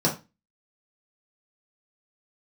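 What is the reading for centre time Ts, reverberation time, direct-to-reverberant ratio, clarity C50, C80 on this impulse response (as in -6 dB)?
19 ms, 0.25 s, -4.5 dB, 10.5 dB, 17.5 dB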